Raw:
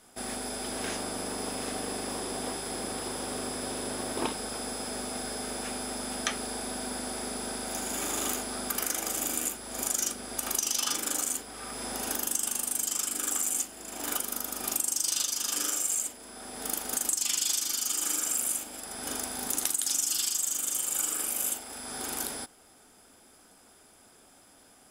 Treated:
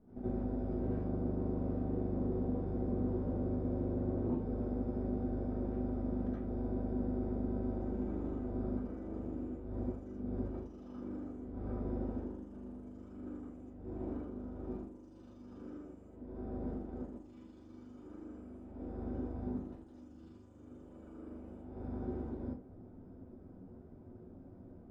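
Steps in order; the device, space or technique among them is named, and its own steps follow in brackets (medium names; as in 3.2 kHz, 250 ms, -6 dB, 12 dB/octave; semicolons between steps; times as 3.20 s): television next door (compression 4:1, threshold -39 dBFS, peak gain reduction 13.5 dB; low-pass 260 Hz 12 dB/octave; reverberation RT60 0.30 s, pre-delay 68 ms, DRR -9 dB); trim +5 dB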